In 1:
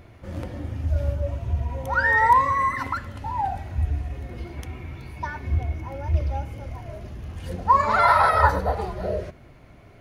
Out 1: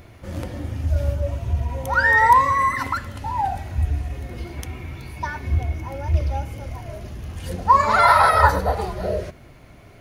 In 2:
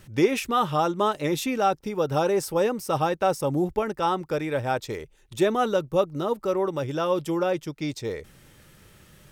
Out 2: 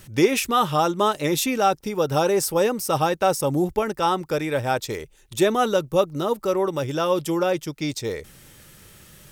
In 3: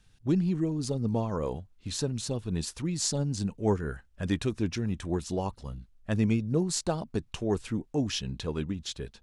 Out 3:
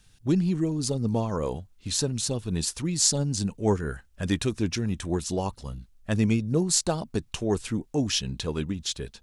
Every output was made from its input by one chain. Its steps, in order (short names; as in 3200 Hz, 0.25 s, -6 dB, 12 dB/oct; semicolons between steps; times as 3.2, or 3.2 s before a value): high shelf 4200 Hz +8 dB; gain +2.5 dB